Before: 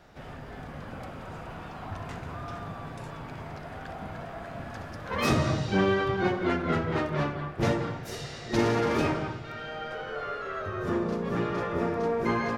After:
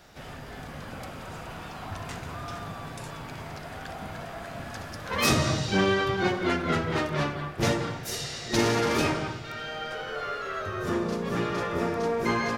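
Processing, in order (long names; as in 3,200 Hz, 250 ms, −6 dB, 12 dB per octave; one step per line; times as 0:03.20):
high-shelf EQ 3,100 Hz +12 dB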